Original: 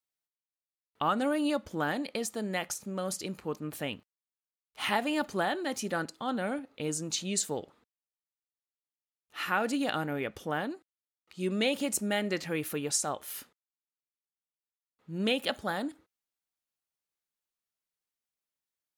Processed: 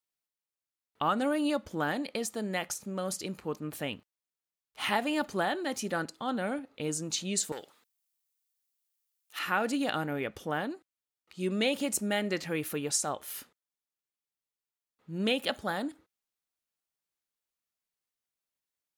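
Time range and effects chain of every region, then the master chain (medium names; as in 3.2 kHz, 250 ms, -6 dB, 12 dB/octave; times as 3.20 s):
7.52–9.39 s: tilt EQ +4 dB/octave + transformer saturation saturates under 1.3 kHz
whole clip: none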